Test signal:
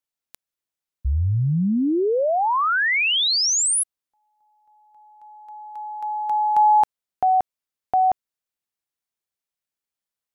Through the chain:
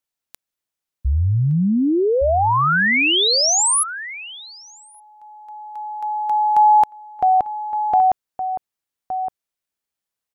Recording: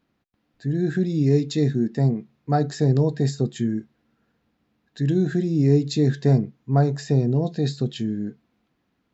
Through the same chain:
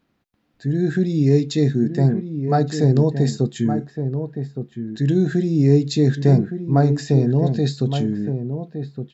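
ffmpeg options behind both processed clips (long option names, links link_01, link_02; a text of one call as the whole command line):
ffmpeg -i in.wav -filter_complex "[0:a]asplit=2[link_01][link_02];[link_02]adelay=1166,volume=-8dB,highshelf=frequency=4000:gain=-26.2[link_03];[link_01][link_03]amix=inputs=2:normalize=0,volume=3dB" out.wav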